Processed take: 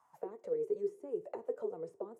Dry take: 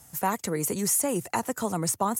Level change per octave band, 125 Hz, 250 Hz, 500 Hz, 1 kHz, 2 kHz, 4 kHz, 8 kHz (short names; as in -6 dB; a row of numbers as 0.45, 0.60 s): -26.5 dB, -18.5 dB, -4.0 dB, -23.5 dB, under -25 dB, under -35 dB, under -40 dB